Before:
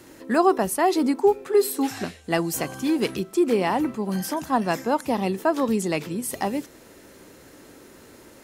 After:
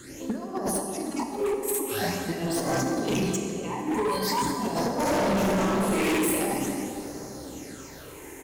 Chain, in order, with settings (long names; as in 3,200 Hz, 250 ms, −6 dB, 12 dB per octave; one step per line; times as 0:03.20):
reverse bouncing-ball delay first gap 30 ms, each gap 1.5×, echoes 5
0:02.46–0:02.87: mid-hump overdrive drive 17 dB, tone 1,600 Hz, clips at −9.5 dBFS
parametric band 6,500 Hz +8 dB 0.44 octaves
hum removal 48.27 Hz, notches 10
compressor whose output falls as the input rises −26 dBFS, ratio −0.5
0:00.96–0:01.86: all-pass dispersion lows, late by 42 ms, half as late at 330 Hz
all-pass phaser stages 8, 0.45 Hz, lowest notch 170–2,900 Hz
0:03.96–0:04.46: EQ curve with evenly spaced ripples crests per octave 0.97, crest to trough 13 dB
convolution reverb RT60 3.2 s, pre-delay 18 ms, DRR 3.5 dB
0:05.02–0:06.13: thrown reverb, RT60 1.7 s, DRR −8 dB
gain into a clipping stage and back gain 22 dB